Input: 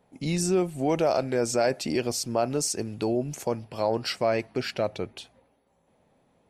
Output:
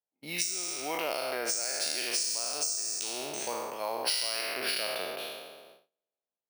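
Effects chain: spectral trails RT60 2.08 s; weighting filter ITU-R 468; gate -40 dBFS, range -28 dB; HPF 110 Hz; high shelf 4600 Hz +9.5 dB; low-pass opened by the level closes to 950 Hz, open at -7 dBFS; compressor 6:1, threshold -23 dBFS, peak gain reduction 17.5 dB; careless resampling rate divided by 3×, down filtered, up hold; gain -5 dB

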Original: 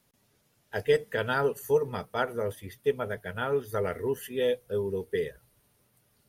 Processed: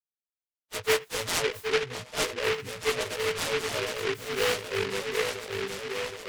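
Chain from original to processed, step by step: frequency quantiser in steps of 2 st; low shelf 170 Hz -4 dB; loudest bins only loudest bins 8; low-pass opened by the level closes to 1300 Hz, open at -25 dBFS; repeats that get brighter 0.769 s, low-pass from 400 Hz, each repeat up 2 oct, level -3 dB; noise-modulated delay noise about 1900 Hz, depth 0.23 ms

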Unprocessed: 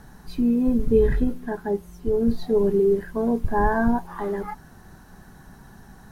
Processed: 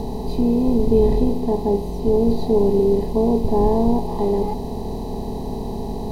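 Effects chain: per-bin compression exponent 0.4; Butterworth band-stop 1500 Hz, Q 0.82

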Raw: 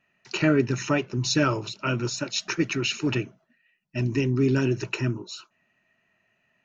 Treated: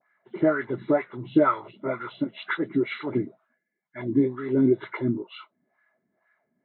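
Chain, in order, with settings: nonlinear frequency compression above 1400 Hz 1.5:1; dispersion highs, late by 44 ms, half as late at 2800 Hz; LFO band-pass sine 2.1 Hz 240–1500 Hz; gain +8 dB

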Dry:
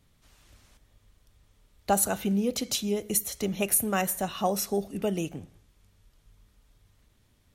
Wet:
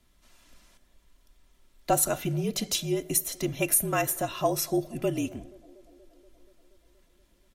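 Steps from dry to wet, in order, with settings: comb 2.9 ms, depth 47%; frequency shift -48 Hz; on a send: narrowing echo 0.238 s, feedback 76%, band-pass 470 Hz, level -22 dB

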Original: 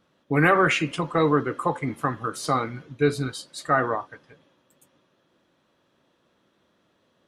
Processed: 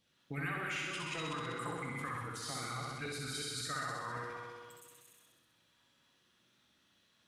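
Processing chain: reverse delay 0.19 s, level -4 dB; passive tone stack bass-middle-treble 5-5-5; resonator 120 Hz, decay 1.2 s, harmonics all, mix 70%; LFO notch saw down 3.6 Hz 330–1500 Hz; compressor 5:1, threshold -54 dBFS, peak gain reduction 15 dB; 1.69–2.46 high shelf 6500 Hz -10.5 dB; flutter echo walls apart 11.1 m, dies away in 1.3 s; sustainer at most 28 dB/s; gain +14 dB

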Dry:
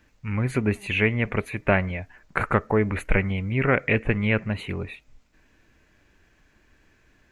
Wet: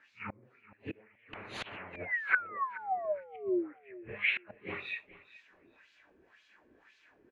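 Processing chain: phase scrambler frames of 0.2 s; 3.94–4.37 passive tone stack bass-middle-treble 10-0-10; treble ducked by the level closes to 1100 Hz, closed at -17.5 dBFS; 2.68–3.24 sample leveller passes 1; flipped gate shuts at -19 dBFS, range -31 dB; 1.93–3.73 painted sound fall 290–2500 Hz -35 dBFS; LFO band-pass sine 1.9 Hz 350–3800 Hz; on a send: feedback echo 0.426 s, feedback 22%, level -18 dB; 1.33–1.96 on the sum: spectral compressor 10:1; gain +7 dB

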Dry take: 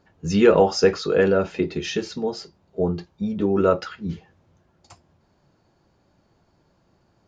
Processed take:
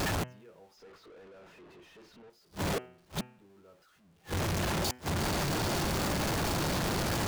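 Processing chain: zero-crossing step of -18 dBFS; flipped gate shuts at -22 dBFS, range -36 dB; de-hum 125.2 Hz, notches 25; 0.77–2.3 overdrive pedal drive 39 dB, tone 1600 Hz, clips at -40 dBFS; gain -6.5 dB

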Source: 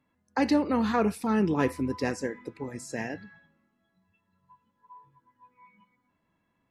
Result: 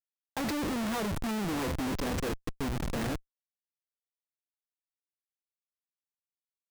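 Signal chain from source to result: bell 5900 Hz -2 dB 1.1 oct; Schmitt trigger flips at -36.5 dBFS

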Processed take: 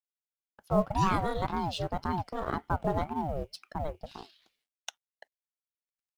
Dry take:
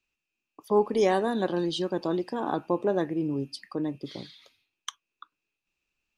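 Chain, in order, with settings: G.711 law mismatch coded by A; ring modulator with a swept carrier 400 Hz, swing 45%, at 1.9 Hz

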